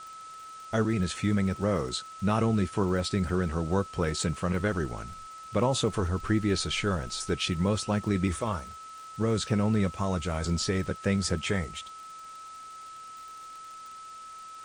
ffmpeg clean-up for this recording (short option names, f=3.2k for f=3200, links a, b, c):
-af "adeclick=t=4,bandreject=f=1.3k:w=30,afwtdn=0.0025"